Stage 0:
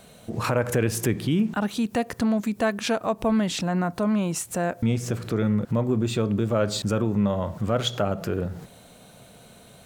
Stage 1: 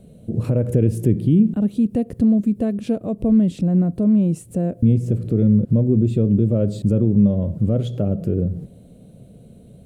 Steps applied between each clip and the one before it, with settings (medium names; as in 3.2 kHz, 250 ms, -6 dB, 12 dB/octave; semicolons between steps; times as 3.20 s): FFT filter 180 Hz 0 dB, 330 Hz -4 dB, 550 Hz -8 dB, 890 Hz -26 dB, 1.6 kHz -28 dB, 2.8 kHz -22 dB, 6.1 kHz -26 dB, 9.5 kHz -17 dB, 15 kHz -24 dB; trim +9 dB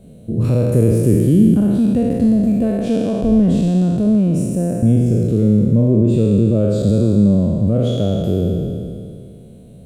spectral sustain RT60 2.40 s; trim +1 dB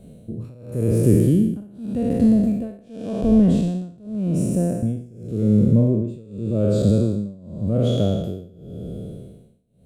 tremolo 0.88 Hz, depth 96%; trim -1.5 dB